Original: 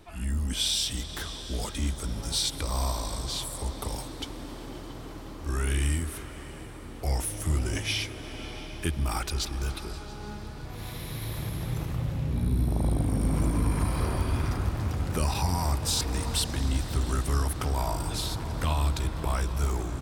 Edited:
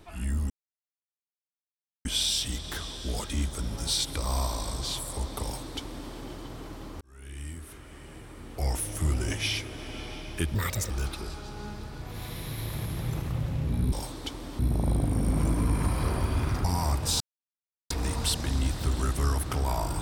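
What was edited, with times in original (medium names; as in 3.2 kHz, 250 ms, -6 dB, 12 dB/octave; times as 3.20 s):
0.50 s: insert silence 1.55 s
3.88–4.55 s: copy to 12.56 s
5.46–7.26 s: fade in
9.00–9.54 s: speed 153%
14.61–15.44 s: delete
16.00 s: insert silence 0.70 s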